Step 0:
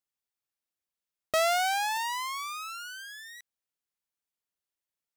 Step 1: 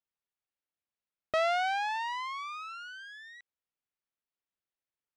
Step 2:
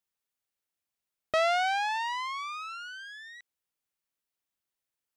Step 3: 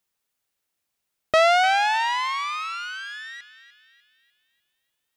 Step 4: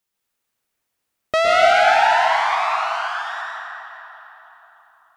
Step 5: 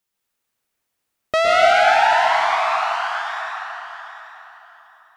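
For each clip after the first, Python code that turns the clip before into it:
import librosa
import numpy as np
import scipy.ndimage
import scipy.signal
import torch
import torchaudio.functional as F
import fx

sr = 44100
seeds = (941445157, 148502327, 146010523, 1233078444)

y1 = scipy.signal.sosfilt(scipy.signal.butter(2, 3200.0, 'lowpass', fs=sr, output='sos'), x)
y1 = y1 * 10.0 ** (-2.0 / 20.0)
y2 = fx.high_shelf(y1, sr, hz=4500.0, db=5.5)
y2 = y2 * 10.0 ** (2.0 / 20.0)
y3 = fx.echo_banded(y2, sr, ms=298, feedback_pct=50, hz=3000.0, wet_db=-12)
y3 = y3 * 10.0 ** (8.5 / 20.0)
y4 = fx.rev_plate(y3, sr, seeds[0], rt60_s=3.8, hf_ratio=0.3, predelay_ms=100, drr_db=-5.0)
y4 = y4 * 10.0 ** (-1.0 / 20.0)
y5 = fx.echo_feedback(y4, sr, ms=792, feedback_pct=17, wet_db=-13.0)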